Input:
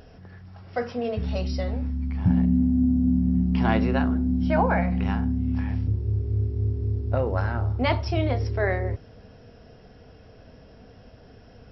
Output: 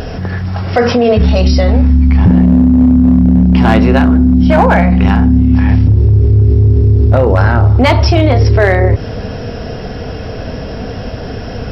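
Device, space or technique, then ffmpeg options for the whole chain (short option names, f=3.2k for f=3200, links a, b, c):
loud club master: -af "acompressor=threshold=-29dB:ratio=1.5,asoftclip=type=hard:threshold=-20dB,alimiter=level_in=28dB:limit=-1dB:release=50:level=0:latency=1,volume=-1dB"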